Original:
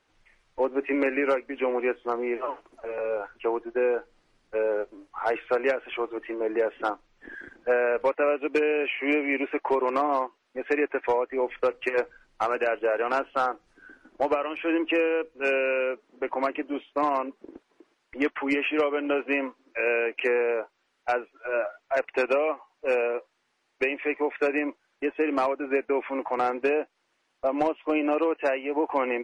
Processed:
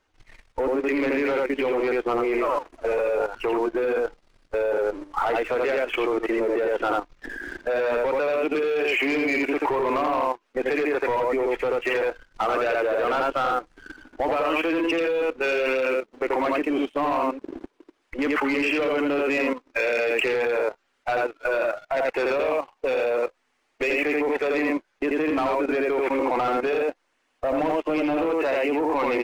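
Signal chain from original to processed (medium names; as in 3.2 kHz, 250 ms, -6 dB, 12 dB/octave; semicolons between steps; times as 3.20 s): coarse spectral quantiser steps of 15 dB; bass shelf 61 Hz +9.5 dB; in parallel at -1 dB: compression 4:1, threshold -38 dBFS, peak gain reduction 15.5 dB; on the sum: delay 84 ms -3.5 dB; waveshaping leveller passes 2; level held to a coarse grid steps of 12 dB; trim +1 dB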